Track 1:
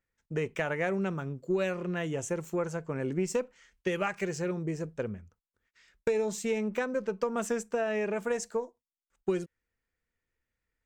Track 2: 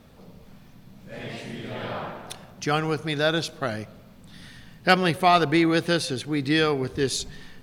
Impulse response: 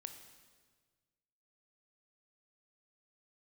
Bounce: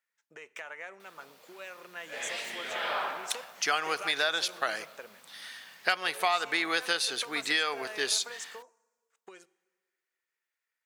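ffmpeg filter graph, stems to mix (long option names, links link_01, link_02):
-filter_complex "[0:a]acompressor=threshold=-36dB:ratio=6,asoftclip=type=hard:threshold=-27.5dB,volume=-0.5dB,asplit=2[link_01][link_02];[link_02]volume=-8.5dB[link_03];[1:a]acrusher=bits=10:mix=0:aa=0.000001,adelay=1000,volume=1.5dB[link_04];[2:a]atrim=start_sample=2205[link_05];[link_03][link_05]afir=irnorm=-1:irlink=0[link_06];[link_01][link_04][link_06]amix=inputs=3:normalize=0,dynaudnorm=framelen=480:gausssize=11:maxgain=11.5dB,highpass=910,acompressor=threshold=-24dB:ratio=6"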